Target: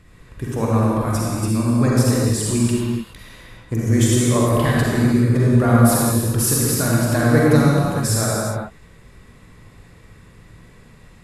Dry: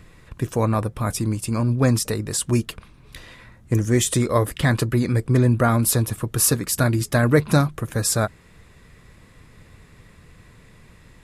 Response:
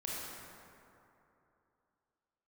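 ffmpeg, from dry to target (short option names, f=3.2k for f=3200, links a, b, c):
-filter_complex "[1:a]atrim=start_sample=2205,afade=t=out:st=0.33:d=0.01,atrim=end_sample=14994,asetrate=29106,aresample=44100[a];[0:a][a]afir=irnorm=-1:irlink=0,volume=-1.5dB"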